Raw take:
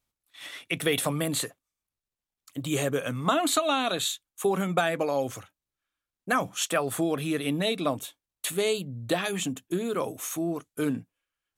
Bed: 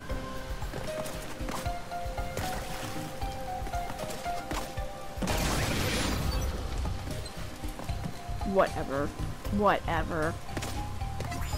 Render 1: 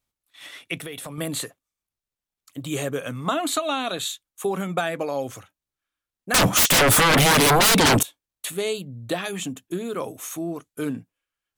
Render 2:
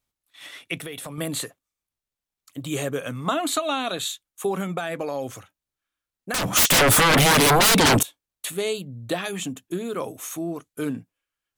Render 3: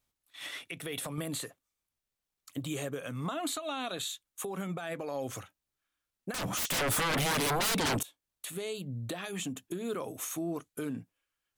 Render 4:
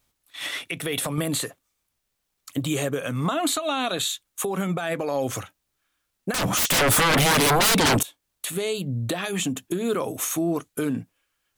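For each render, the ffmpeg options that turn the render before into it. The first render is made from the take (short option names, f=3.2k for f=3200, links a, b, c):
-filter_complex "[0:a]asettb=1/sr,asplit=3[a][b][c];[a]atrim=end=0.784[d];[b]atrim=start=0.78:end=1.18,asetpts=PTS-STARTPTS,afade=t=in:d=0.004:c=qsin,afade=t=out:st=0.396:d=0.004:c=qsin,acompressor=threshold=-33dB:ratio=4:attack=3.2:release=140:knee=1:detection=peak[e];[c]atrim=start=1.176[f];[d][e]acrossfade=d=0.004:c1=hsin:c2=qsin[g];[g][f]acrossfade=d=0.004:c1=qsin:c2=hsin,asettb=1/sr,asplit=3[h][i][j];[h]atrim=end=6.344[k];[i]atrim=start=6.34:end=8.03,asetpts=PTS-STARTPTS,afade=t=in:d=0.004:c=qsin,afade=t=out:st=1.686:d=0.004:c=qsin,aeval=exprs='0.224*sin(PI/2*10*val(0)/0.224)':c=same[l];[j]atrim=start=8.026[m];[k][l]acrossfade=d=0.004:c1=hsin:c2=qsin[n];[n][m]acrossfade=d=0.004:c1=qsin:c2=hsin"
-filter_complex "[0:a]asettb=1/sr,asplit=3[a][b][c];[a]atrim=end=4.774[d];[b]atrim=start=4.77:end=6.52,asetpts=PTS-STARTPTS,afade=t=in:d=0.004:c=qsin,afade=t=out:st=1.746:d=0.004:c=qsin,acompressor=threshold=-23dB:ratio=6:attack=3.2:release=140:knee=1:detection=peak[e];[c]atrim=start=6.516[f];[d][e]acrossfade=d=0.004:c1=hsin:c2=qsin[g];[g][f]acrossfade=d=0.004:c1=qsin:c2=hsin"
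-af "acompressor=threshold=-30dB:ratio=4,alimiter=level_in=2dB:limit=-24dB:level=0:latency=1:release=236,volume=-2dB"
-af "volume=10.5dB"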